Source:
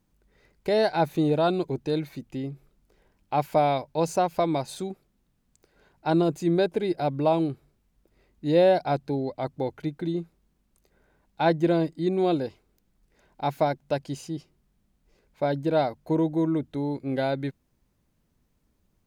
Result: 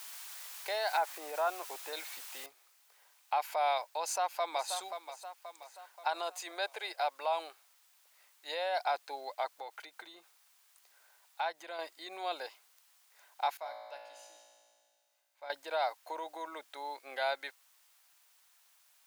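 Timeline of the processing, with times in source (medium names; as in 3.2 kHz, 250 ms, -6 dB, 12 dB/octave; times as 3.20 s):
0.97–1.93 s: low-pass 2.3 kHz 24 dB/octave
2.46 s: noise floor step -49 dB -69 dB
4.02–4.70 s: echo throw 530 ms, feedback 50%, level -14 dB
6.07–8.86 s: high-pass 410 Hz
9.59–11.79 s: compression 3:1, threshold -32 dBFS
13.57–15.50 s: feedback comb 57 Hz, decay 2 s, mix 90%
whole clip: peak limiter -20 dBFS; high-pass 760 Hz 24 dB/octave; trim +2 dB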